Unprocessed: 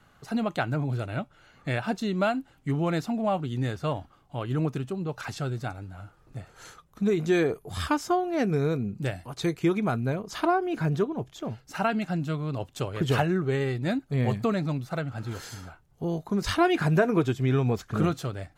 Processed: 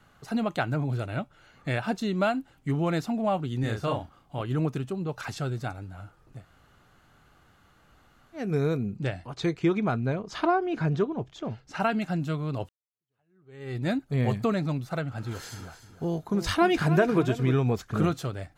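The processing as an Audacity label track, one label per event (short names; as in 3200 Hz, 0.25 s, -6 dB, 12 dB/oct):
3.600000	4.410000	doubler 36 ms -3.5 dB
6.380000	8.440000	room tone, crossfade 0.24 s
8.970000	11.800000	LPF 5600 Hz
12.690000	13.770000	fade in exponential
15.290000	17.540000	feedback echo 0.302 s, feedback 33%, level -12 dB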